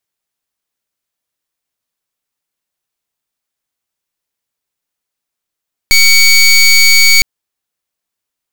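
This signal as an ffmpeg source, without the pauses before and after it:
-f lavfi -i "aevalsrc='0.501*(2*lt(mod(2250*t,1),0.2)-1)':d=1.31:s=44100"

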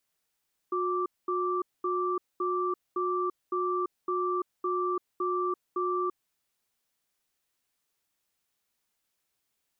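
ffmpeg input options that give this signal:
-f lavfi -i "aevalsrc='0.0355*(sin(2*PI*362*t)+sin(2*PI*1170*t))*clip(min(mod(t,0.56),0.34-mod(t,0.56))/0.005,0,1)':d=5.49:s=44100"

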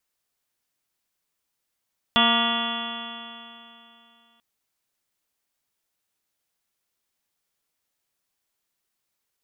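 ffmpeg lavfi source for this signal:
-f lavfi -i "aevalsrc='0.0708*pow(10,-3*t/2.9)*sin(2*PI*230.2*t)+0.0178*pow(10,-3*t/2.9)*sin(2*PI*461.56*t)+0.0562*pow(10,-3*t/2.9)*sin(2*PI*695.26*t)+0.0562*pow(10,-3*t/2.9)*sin(2*PI*932.43*t)+0.0708*pow(10,-3*t/2.9)*sin(2*PI*1174.18*t)+0.0447*pow(10,-3*t/2.9)*sin(2*PI*1421.6*t)+0.0158*pow(10,-3*t/2.9)*sin(2*PI*1675.72*t)+0.0398*pow(10,-3*t/2.9)*sin(2*PI*1937.51*t)+0.0126*pow(10,-3*t/2.9)*sin(2*PI*2207.92*t)+0.0178*pow(10,-3*t/2.9)*sin(2*PI*2487.83*t)+0.0631*pow(10,-3*t/2.9)*sin(2*PI*2778.05*t)+0.0501*pow(10,-3*t/2.9)*sin(2*PI*3079.35*t)+0.112*pow(10,-3*t/2.9)*sin(2*PI*3392.43*t)':d=2.24:s=44100"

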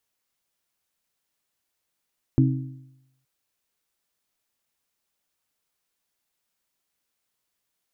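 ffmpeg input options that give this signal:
-f lavfi -i "aevalsrc='0.188*pow(10,-3*t/0.87)*sin(2*PI*132*t)+0.133*pow(10,-3*t/0.707)*sin(2*PI*264*t)+0.0944*pow(10,-3*t/0.669)*sin(2*PI*316.8*t)':d=0.87:s=44100"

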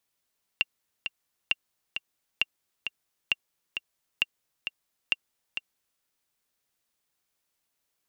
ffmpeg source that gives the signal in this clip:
-f lavfi -i "aevalsrc='pow(10,(-9.5-8*gte(mod(t,2*60/133),60/133))/20)*sin(2*PI*2770*mod(t,60/133))*exp(-6.91*mod(t,60/133)/0.03)':d=5.41:s=44100"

